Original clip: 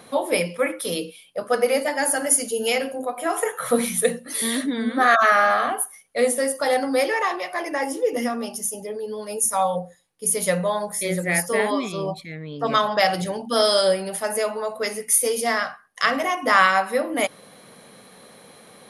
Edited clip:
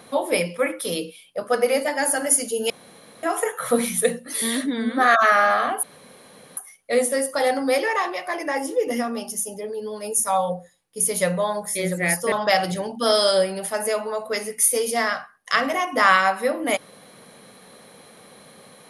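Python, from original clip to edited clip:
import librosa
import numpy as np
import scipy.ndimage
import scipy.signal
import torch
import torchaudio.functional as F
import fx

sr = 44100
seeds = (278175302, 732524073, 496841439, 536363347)

y = fx.edit(x, sr, fx.room_tone_fill(start_s=2.7, length_s=0.53),
    fx.insert_room_tone(at_s=5.83, length_s=0.74),
    fx.cut(start_s=11.58, length_s=1.24), tone=tone)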